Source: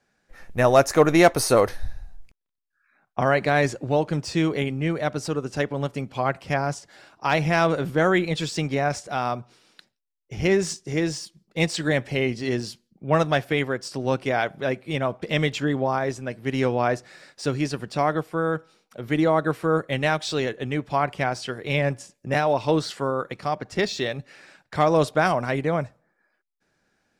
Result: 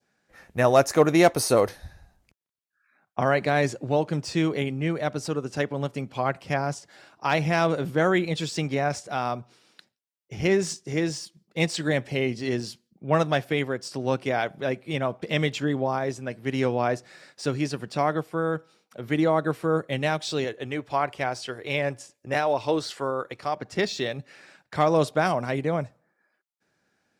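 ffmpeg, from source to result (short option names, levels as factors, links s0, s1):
-filter_complex "[0:a]asettb=1/sr,asplit=3[s0][s1][s2];[s0]atrim=end=20.444[s3];[s1]atrim=start=20.44:end=23.57,asetpts=PTS-STARTPTS,afade=t=in:d=0.004:c=qsin,afade=t=out:st=3.126:d=0.004:c=qsin,equalizer=f=180:t=o:w=0.77:g=-11[s4];[s2]atrim=start=23.566[s5];[s3][s4]acrossfade=d=0.004:c1=hsin:c2=qsin[s6];[s6][s5]acrossfade=d=0.004:c1=qsin:c2=hsin,highpass=80,adynamicequalizer=threshold=0.0158:dfrequency=1500:dqfactor=0.97:tfrequency=1500:tqfactor=0.97:attack=5:release=100:ratio=0.375:range=2:mode=cutabove:tftype=bell,volume=0.841"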